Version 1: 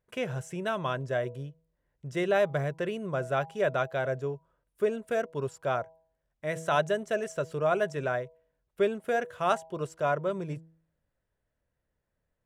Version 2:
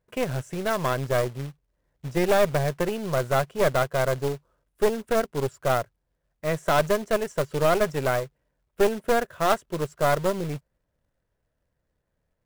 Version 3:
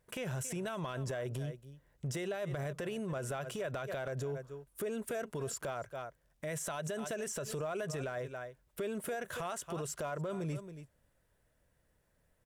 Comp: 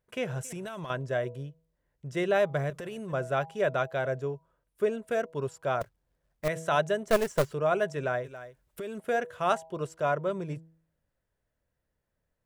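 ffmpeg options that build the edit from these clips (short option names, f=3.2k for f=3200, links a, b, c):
-filter_complex "[2:a]asplit=3[a][b][c];[1:a]asplit=2[d][e];[0:a]asplit=6[f][g][h][i][j][k];[f]atrim=end=0.432[l];[a]atrim=start=0.428:end=0.902[m];[g]atrim=start=0.898:end=2.702[n];[b]atrim=start=2.698:end=3.132[o];[h]atrim=start=3.128:end=5.812[p];[d]atrim=start=5.808:end=6.482[q];[i]atrim=start=6.478:end=7.082[r];[e]atrim=start=7.078:end=7.532[s];[j]atrim=start=7.528:end=8.242[t];[c]atrim=start=8.238:end=9.002[u];[k]atrim=start=8.998[v];[l][m]acrossfade=d=0.004:c1=hsin:c2=hsin[w];[w][n]acrossfade=d=0.004:c1=hsin:c2=hsin[x];[x][o]acrossfade=d=0.004:c1=hsin:c2=hsin[y];[y][p]acrossfade=d=0.004:c1=hsin:c2=hsin[z];[z][q]acrossfade=d=0.004:c1=hsin:c2=hsin[aa];[aa][r]acrossfade=d=0.004:c1=hsin:c2=hsin[ab];[ab][s]acrossfade=d=0.004:c1=hsin:c2=hsin[ac];[ac][t]acrossfade=d=0.004:c1=hsin:c2=hsin[ad];[ad][u]acrossfade=d=0.004:c1=hsin:c2=hsin[ae];[ae][v]acrossfade=d=0.004:c1=hsin:c2=hsin"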